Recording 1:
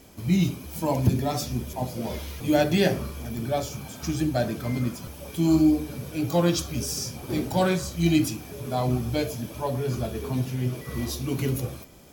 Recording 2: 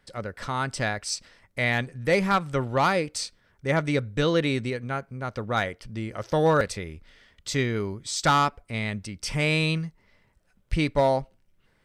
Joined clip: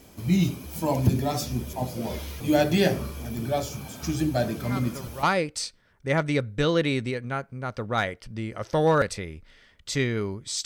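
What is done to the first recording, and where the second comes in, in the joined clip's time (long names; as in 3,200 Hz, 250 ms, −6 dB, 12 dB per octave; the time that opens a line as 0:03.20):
recording 1
0:04.61: mix in recording 2 from 0:02.20 0.62 s −14 dB
0:05.23: continue with recording 2 from 0:02.82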